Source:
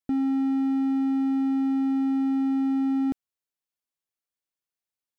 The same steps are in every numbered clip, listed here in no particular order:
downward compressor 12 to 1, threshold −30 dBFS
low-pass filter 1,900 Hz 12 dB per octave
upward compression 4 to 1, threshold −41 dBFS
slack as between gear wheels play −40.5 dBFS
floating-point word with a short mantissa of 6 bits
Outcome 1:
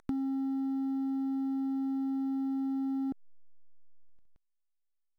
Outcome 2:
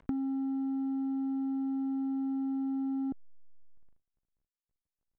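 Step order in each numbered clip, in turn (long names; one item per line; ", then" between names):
low-pass filter, then upward compression, then slack as between gear wheels, then floating-point word with a short mantissa, then downward compressor
downward compressor, then upward compression, then slack as between gear wheels, then floating-point word with a short mantissa, then low-pass filter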